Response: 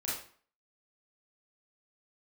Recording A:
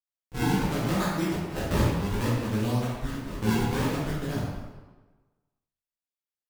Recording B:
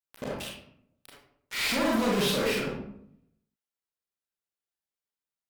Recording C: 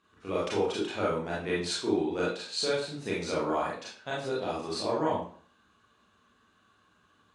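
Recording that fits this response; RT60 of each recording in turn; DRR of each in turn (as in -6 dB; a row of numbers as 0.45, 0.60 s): C; 1.2, 0.70, 0.50 s; -9.0, -4.0, -7.0 dB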